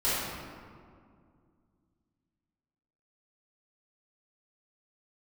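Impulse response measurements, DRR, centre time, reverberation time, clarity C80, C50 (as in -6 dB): -14.0 dB, 0.131 s, 2.2 s, -0.5 dB, -3.5 dB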